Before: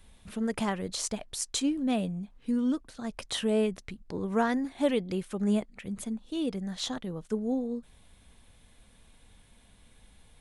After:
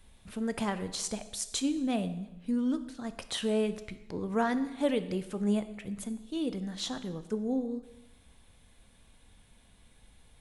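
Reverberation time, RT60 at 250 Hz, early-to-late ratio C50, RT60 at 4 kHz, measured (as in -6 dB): 0.95 s, 1.0 s, 13.5 dB, 0.90 s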